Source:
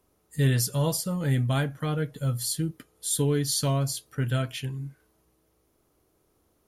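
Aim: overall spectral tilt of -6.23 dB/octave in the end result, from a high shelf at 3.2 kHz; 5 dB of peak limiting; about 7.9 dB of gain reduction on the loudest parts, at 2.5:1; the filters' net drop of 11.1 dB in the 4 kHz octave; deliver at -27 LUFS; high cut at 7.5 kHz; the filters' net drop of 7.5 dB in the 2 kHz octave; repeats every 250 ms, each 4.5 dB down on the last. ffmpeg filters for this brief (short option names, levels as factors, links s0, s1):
-af "lowpass=7500,equalizer=f=2000:t=o:g=-6.5,highshelf=f=3200:g=-7.5,equalizer=f=4000:t=o:g=-6,acompressor=threshold=0.0282:ratio=2.5,alimiter=level_in=1.41:limit=0.0631:level=0:latency=1,volume=0.708,aecho=1:1:250|500|750|1000|1250|1500|1750|2000|2250:0.596|0.357|0.214|0.129|0.0772|0.0463|0.0278|0.0167|0.01,volume=2.37"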